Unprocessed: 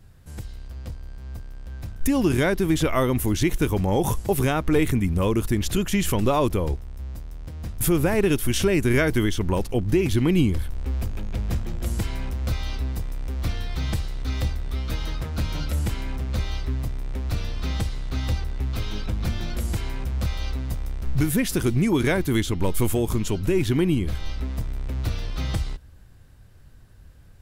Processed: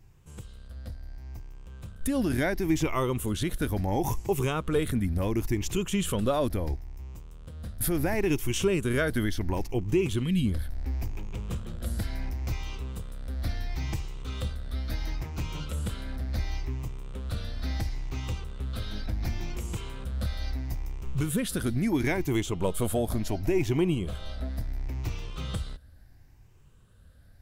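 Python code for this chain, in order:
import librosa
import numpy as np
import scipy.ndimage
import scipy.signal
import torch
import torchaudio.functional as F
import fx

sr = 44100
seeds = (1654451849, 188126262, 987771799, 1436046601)

y = fx.spec_ripple(x, sr, per_octave=0.72, drift_hz=0.72, depth_db=8)
y = fx.spec_box(y, sr, start_s=10.23, length_s=0.23, low_hz=260.0, high_hz=1600.0, gain_db=-12)
y = fx.peak_eq(y, sr, hz=670.0, db=11.0, octaves=0.5, at=(22.27, 24.49))
y = y * 10.0 ** (-6.5 / 20.0)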